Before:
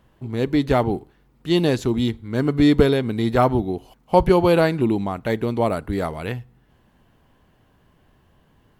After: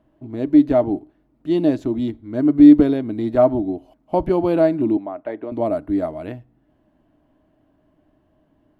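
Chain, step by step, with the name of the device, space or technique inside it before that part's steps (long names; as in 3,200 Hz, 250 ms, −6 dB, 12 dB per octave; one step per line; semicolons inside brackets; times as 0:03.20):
inside a helmet (high-shelf EQ 3,500 Hz −9 dB; hollow resonant body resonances 300/620 Hz, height 17 dB, ringing for 60 ms)
0:04.97–0:05.52: three-way crossover with the lows and the highs turned down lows −16 dB, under 360 Hz, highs −18 dB, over 2,900 Hz
level −8 dB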